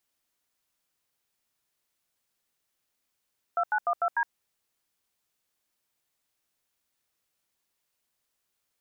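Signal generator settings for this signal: DTMF "2912D", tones 65 ms, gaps 84 ms, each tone -25.5 dBFS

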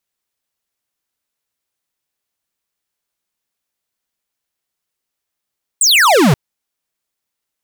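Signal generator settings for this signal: laser zap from 8.7 kHz, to 120 Hz, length 0.53 s square, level -9.5 dB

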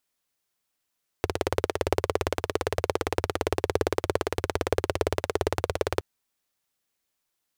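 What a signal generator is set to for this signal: single-cylinder engine model, steady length 4.77 s, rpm 2100, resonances 88/420 Hz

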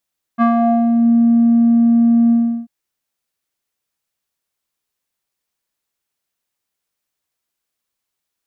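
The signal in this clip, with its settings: synth note square A#3 12 dB/octave, low-pass 330 Hz, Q 2.7, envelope 2 oct, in 0.69 s, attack 36 ms, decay 0.11 s, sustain -3 dB, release 0.36 s, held 1.93 s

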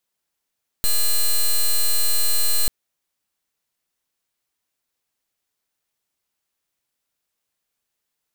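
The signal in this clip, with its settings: pulse 4.12 kHz, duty 8% -16.5 dBFS 1.84 s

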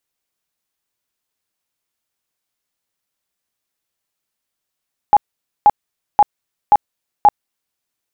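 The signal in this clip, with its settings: tone bursts 831 Hz, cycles 31, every 0.53 s, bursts 5, -4.5 dBFS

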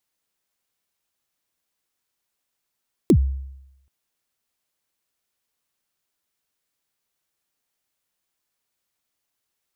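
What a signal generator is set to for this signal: kick drum length 0.78 s, from 410 Hz, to 67 Hz, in 74 ms, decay 0.87 s, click on, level -8.5 dB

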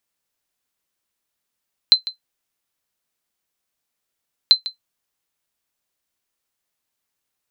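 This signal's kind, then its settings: sonar ping 4.08 kHz, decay 0.12 s, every 2.59 s, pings 2, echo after 0.15 s, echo -16 dB -1.5 dBFS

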